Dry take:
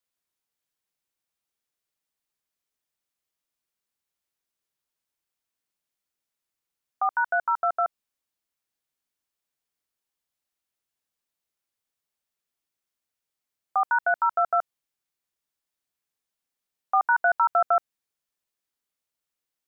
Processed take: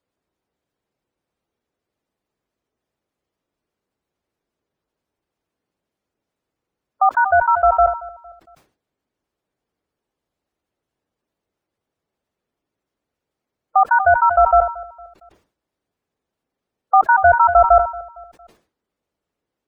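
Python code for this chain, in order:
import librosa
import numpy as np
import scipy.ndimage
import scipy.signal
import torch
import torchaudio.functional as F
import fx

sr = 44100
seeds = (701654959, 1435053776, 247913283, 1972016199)

p1 = fx.peak_eq(x, sr, hz=410.0, db=7.5, octaves=2.1)
p2 = np.clip(p1, -10.0 ** (-19.0 / 20.0), 10.0 ** (-19.0 / 20.0))
p3 = p1 + (p2 * librosa.db_to_amplitude(-3.0))
p4 = scipy.signal.sosfilt(scipy.signal.butter(2, 40.0, 'highpass', fs=sr, output='sos'), p3)
p5 = fx.tilt_eq(p4, sr, slope=-2.5)
p6 = fx.spec_gate(p5, sr, threshold_db=-20, keep='strong')
p7 = p6 + fx.echo_feedback(p6, sr, ms=229, feedback_pct=43, wet_db=-20.0, dry=0)
p8 = fx.sustainer(p7, sr, db_per_s=140.0)
y = p8 * librosa.db_to_amplitude(3.0)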